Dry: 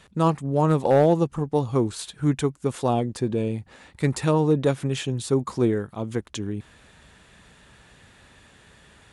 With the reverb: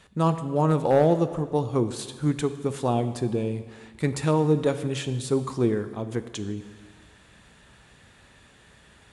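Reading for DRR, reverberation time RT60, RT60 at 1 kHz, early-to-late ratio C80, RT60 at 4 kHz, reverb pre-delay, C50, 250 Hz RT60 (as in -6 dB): 10.5 dB, 1.6 s, 1.6 s, 13.5 dB, 1.5 s, 5 ms, 12.0 dB, 1.6 s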